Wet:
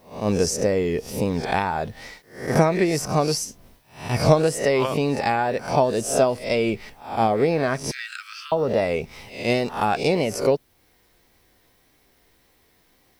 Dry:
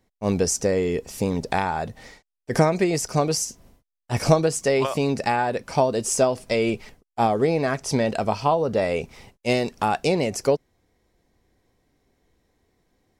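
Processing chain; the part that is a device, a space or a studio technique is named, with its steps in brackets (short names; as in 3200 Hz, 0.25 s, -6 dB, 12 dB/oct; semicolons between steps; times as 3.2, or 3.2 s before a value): spectral swells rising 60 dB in 0.39 s; noise-reduction cassette on a plain deck (mismatched tape noise reduction encoder only; wow and flutter; white noise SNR 41 dB); 7.91–8.52 steep high-pass 1300 Hz 96 dB/oct; bell 7700 Hz -5 dB 0.91 oct; notch 6800 Hz, Q 17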